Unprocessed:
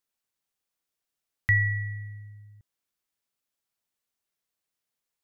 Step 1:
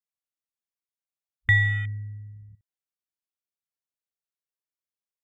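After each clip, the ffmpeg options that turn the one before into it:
-af "afwtdn=0.0178,volume=1.41"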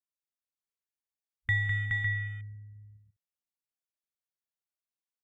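-af "aecho=1:1:204|421|477|555:0.562|0.631|0.106|0.473,volume=0.376"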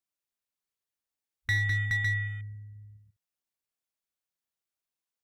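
-af "asoftclip=type=hard:threshold=0.0562,volume=1.33"

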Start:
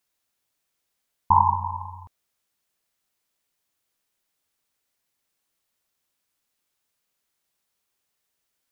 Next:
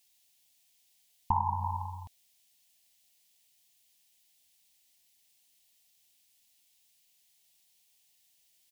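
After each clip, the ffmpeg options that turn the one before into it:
-af "firequalizer=gain_entry='entry(210,0);entry(480,-9);entry(710,3);entry(1300,-15);entry(1800,1);entry(2900,10)':delay=0.05:min_phase=1,acompressor=threshold=0.0562:ratio=6"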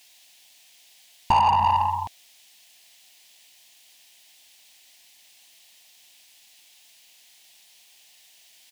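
-filter_complex "[0:a]asplit=2[s0][s1];[s1]highpass=f=720:p=1,volume=15.8,asoftclip=type=tanh:threshold=0.178[s2];[s0][s2]amix=inputs=2:normalize=0,lowpass=f=2800:p=1,volume=0.501,volume=1.68"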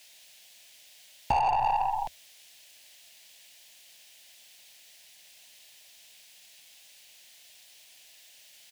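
-af "acompressor=threshold=0.0501:ratio=2.5,afreqshift=-78"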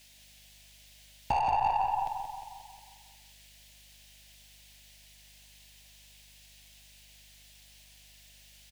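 -filter_complex "[0:a]aeval=exprs='val(0)+0.000708*(sin(2*PI*50*n/s)+sin(2*PI*2*50*n/s)/2+sin(2*PI*3*50*n/s)/3+sin(2*PI*4*50*n/s)/4+sin(2*PI*5*50*n/s)/5)':c=same,asplit=2[s0][s1];[s1]adelay=179,lowpass=f=4500:p=1,volume=0.473,asplit=2[s2][s3];[s3]adelay=179,lowpass=f=4500:p=1,volume=0.55,asplit=2[s4][s5];[s5]adelay=179,lowpass=f=4500:p=1,volume=0.55,asplit=2[s6][s7];[s7]adelay=179,lowpass=f=4500:p=1,volume=0.55,asplit=2[s8][s9];[s9]adelay=179,lowpass=f=4500:p=1,volume=0.55,asplit=2[s10][s11];[s11]adelay=179,lowpass=f=4500:p=1,volume=0.55,asplit=2[s12][s13];[s13]adelay=179,lowpass=f=4500:p=1,volume=0.55[s14];[s2][s4][s6][s8][s10][s12][s14]amix=inputs=7:normalize=0[s15];[s0][s15]amix=inputs=2:normalize=0,volume=0.708"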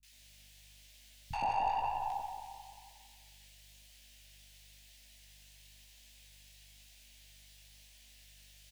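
-filter_complex "[0:a]flanger=delay=16:depth=5.9:speed=1,acrossover=split=170|910[s0][s1][s2];[s2]adelay=30[s3];[s1]adelay=120[s4];[s0][s4][s3]amix=inputs=3:normalize=0"

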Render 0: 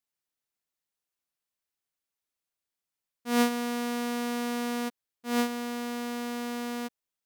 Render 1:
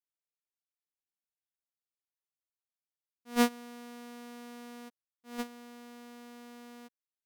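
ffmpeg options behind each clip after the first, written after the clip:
-af "agate=range=0.158:threshold=0.0708:ratio=16:detection=peak"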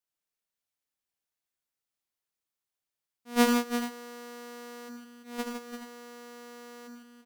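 -af "aecho=1:1:77|111|156|340|424:0.473|0.335|0.473|0.355|0.211,volume=1.41"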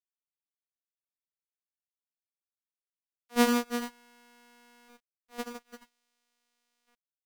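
-af "aeval=exprs='sgn(val(0))*max(abs(val(0))-0.00891,0)':c=same"

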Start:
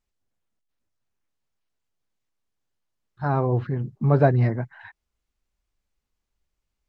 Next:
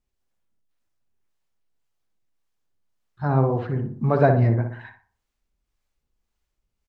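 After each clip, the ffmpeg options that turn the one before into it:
-filter_complex "[0:a]acrossover=split=520[s0][s1];[s0]aeval=exprs='val(0)*(1-0.5/2+0.5/2*cos(2*PI*1.8*n/s))':c=same[s2];[s1]aeval=exprs='val(0)*(1-0.5/2-0.5/2*cos(2*PI*1.8*n/s))':c=same[s3];[s2][s3]amix=inputs=2:normalize=0,asplit=2[s4][s5];[s5]adelay=60,lowpass=f=1500:p=1,volume=0.562,asplit=2[s6][s7];[s7]adelay=60,lowpass=f=1500:p=1,volume=0.46,asplit=2[s8][s9];[s9]adelay=60,lowpass=f=1500:p=1,volume=0.46,asplit=2[s10][s11];[s11]adelay=60,lowpass=f=1500:p=1,volume=0.46,asplit=2[s12][s13];[s13]adelay=60,lowpass=f=1500:p=1,volume=0.46,asplit=2[s14][s15];[s15]adelay=60,lowpass=f=1500:p=1,volume=0.46[s16];[s6][s8][s10][s12][s14][s16]amix=inputs=6:normalize=0[s17];[s4][s17]amix=inputs=2:normalize=0,volume=1.41"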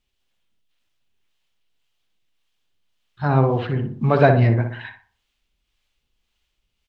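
-af "equalizer=f=3100:w=1.2:g=14,volume=1.33"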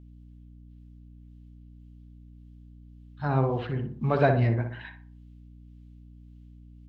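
-af "aeval=exprs='val(0)+0.01*(sin(2*PI*60*n/s)+sin(2*PI*2*60*n/s)/2+sin(2*PI*3*60*n/s)/3+sin(2*PI*4*60*n/s)/4+sin(2*PI*5*60*n/s)/5)':c=same,volume=0.422"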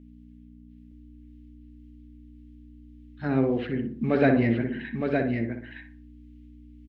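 -af "equalizer=f=125:t=o:w=1:g=-6,equalizer=f=250:t=o:w=1:g=12,equalizer=f=500:t=o:w=1:g=4,equalizer=f=1000:t=o:w=1:g=-11,equalizer=f=2000:t=o:w=1:g=11,aecho=1:1:914:0.596,volume=0.75"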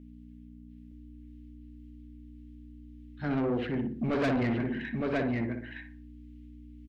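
-af "asoftclip=type=tanh:threshold=0.0596"

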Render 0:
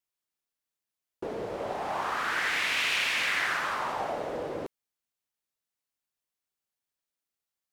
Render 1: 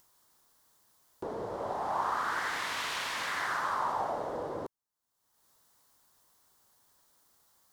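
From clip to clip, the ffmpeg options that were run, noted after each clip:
-af "equalizer=f=100:t=o:w=0.67:g=3,equalizer=f=1000:t=o:w=0.67:g=7,equalizer=f=2500:t=o:w=0.67:g=-11,acompressor=mode=upward:threshold=0.00708:ratio=2.5,volume=0.668"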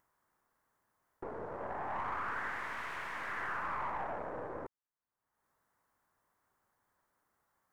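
-af "aeval=exprs='(tanh(44.7*val(0)+0.7)-tanh(0.7))/44.7':c=same,highshelf=f=2700:t=q:w=1.5:g=-12,volume=0.794"

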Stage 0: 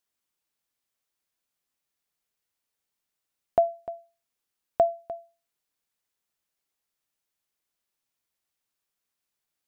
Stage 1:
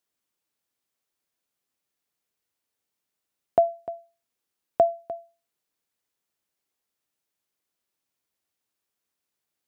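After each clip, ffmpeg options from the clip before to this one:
-af "highpass=f=43:w=0.5412,highpass=f=43:w=1.3066,equalizer=f=340:w=0.72:g=4"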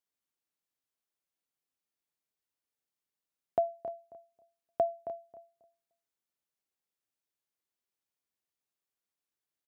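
-filter_complex "[0:a]asplit=2[s0][s1];[s1]adelay=270,lowpass=f=1500:p=1,volume=0.266,asplit=2[s2][s3];[s3]adelay=270,lowpass=f=1500:p=1,volume=0.21,asplit=2[s4][s5];[s5]adelay=270,lowpass=f=1500:p=1,volume=0.21[s6];[s0][s2][s4][s6]amix=inputs=4:normalize=0,volume=0.355"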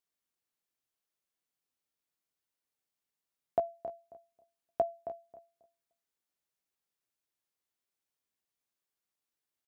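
-filter_complex "[0:a]asplit=2[s0][s1];[s1]adelay=17,volume=0.335[s2];[s0][s2]amix=inputs=2:normalize=0"

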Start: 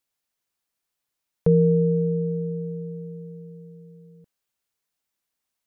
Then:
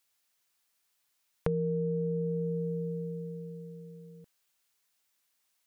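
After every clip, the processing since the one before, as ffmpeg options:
-af "tiltshelf=f=770:g=-4.5,acompressor=threshold=0.0282:ratio=6,volume=1.33"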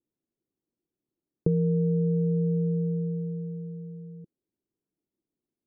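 -af "lowpass=f=340:t=q:w=3.9,equalizer=f=170:t=o:w=1.6:g=6.5"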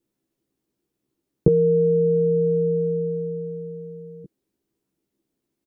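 -filter_complex "[0:a]asplit=2[s0][s1];[s1]adelay=15,volume=0.668[s2];[s0][s2]amix=inputs=2:normalize=0,volume=2.66"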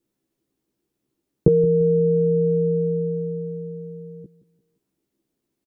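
-af "aecho=1:1:173|346|519:0.141|0.0551|0.0215,volume=1.12"

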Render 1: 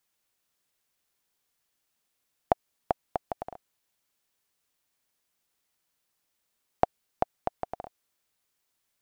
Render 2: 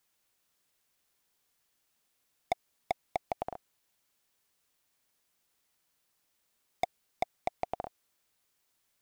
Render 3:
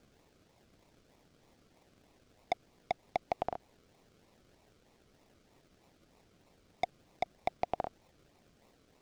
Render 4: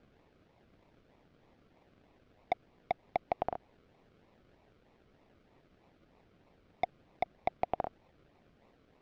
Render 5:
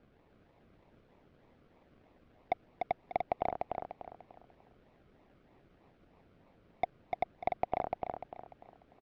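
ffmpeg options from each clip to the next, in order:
-af "volume=13.3,asoftclip=hard,volume=0.075,volume=1.26"
-filter_complex "[0:a]aemphasis=mode=production:type=cd,alimiter=limit=0.0841:level=0:latency=1:release=32,acrossover=split=460|6000[s0][s1][s2];[s2]acrusher=samples=39:mix=1:aa=0.000001:lfo=1:lforange=23.4:lforate=3.2[s3];[s0][s1][s3]amix=inputs=3:normalize=0,volume=1.5"
-af "lowpass=2900,volume=1.12"
-filter_complex "[0:a]highshelf=f=4500:g=-10,asplit=2[s0][s1];[s1]aecho=0:1:296|592|888|1184:0.631|0.215|0.0729|0.0248[s2];[s0][s2]amix=inputs=2:normalize=0"

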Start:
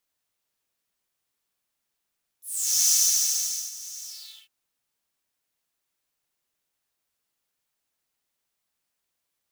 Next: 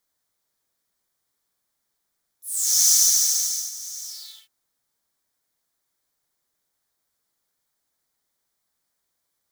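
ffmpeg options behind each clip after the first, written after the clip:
-af "equalizer=f=2700:t=o:w=0.34:g=-12,volume=1.58"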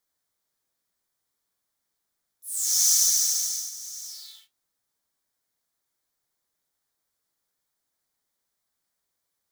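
-af "flanger=delay=9.5:depth=8:regen=-64:speed=0.63:shape=sinusoidal,volume=1.12"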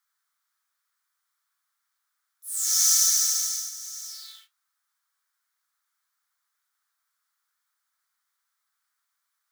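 -af "highpass=f=1300:t=q:w=3.3"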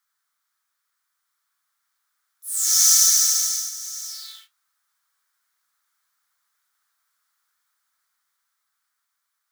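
-af "dynaudnorm=f=390:g=9:m=1.5,volume=1.26"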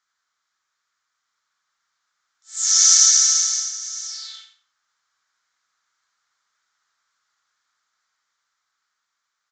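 -af "aecho=1:1:85|170|255:0.355|0.0887|0.0222,aresample=16000,aresample=44100,volume=1.41"

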